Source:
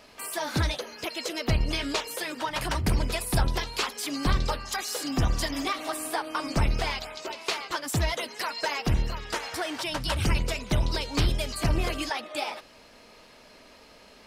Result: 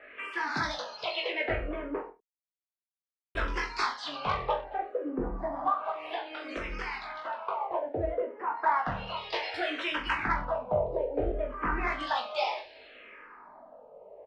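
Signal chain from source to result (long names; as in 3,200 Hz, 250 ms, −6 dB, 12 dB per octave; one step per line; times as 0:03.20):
three-way crossover with the lows and the highs turned down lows −15 dB, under 380 Hz, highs −18 dB, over 3,000 Hz
0:05.68–0:07.59: downward compressor, threshold −34 dBFS, peak gain reduction 8.5 dB
auto-filter low-pass sine 0.34 Hz 530–5,400 Hz
soft clipping −17 dBFS, distortion −24 dB
0:02.08–0:03.35: silence
reverse bouncing-ball delay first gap 20 ms, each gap 1.1×, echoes 5
frequency shifter mixed with the dry sound −0.62 Hz
level +2.5 dB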